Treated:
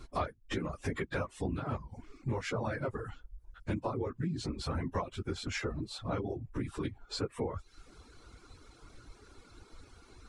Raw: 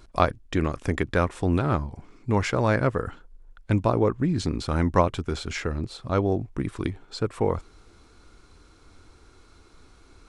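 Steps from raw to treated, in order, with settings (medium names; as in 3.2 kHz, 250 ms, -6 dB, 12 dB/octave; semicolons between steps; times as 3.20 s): phase randomisation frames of 50 ms; compression 4:1, threshold -33 dBFS, peak gain reduction 15.5 dB; reverb removal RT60 0.65 s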